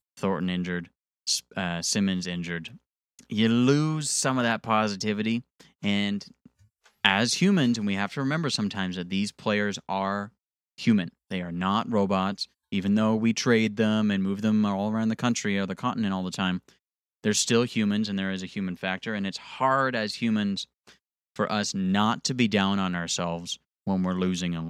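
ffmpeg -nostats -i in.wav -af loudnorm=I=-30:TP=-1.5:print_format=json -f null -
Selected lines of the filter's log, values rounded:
"input_i" : "-26.5",
"input_tp" : "-2.7",
"input_lra" : "3.0",
"input_thresh" : "-36.8",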